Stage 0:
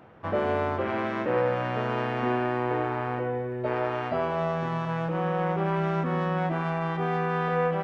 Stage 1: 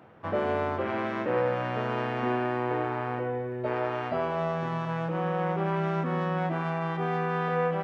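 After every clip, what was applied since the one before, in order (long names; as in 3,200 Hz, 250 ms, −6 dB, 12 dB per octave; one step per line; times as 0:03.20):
high-pass filter 75 Hz
level −1.5 dB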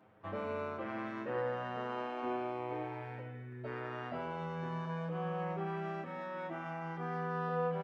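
barber-pole flanger 7.3 ms +0.35 Hz
level −7 dB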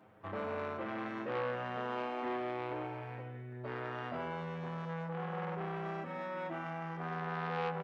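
saturating transformer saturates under 1,300 Hz
level +2.5 dB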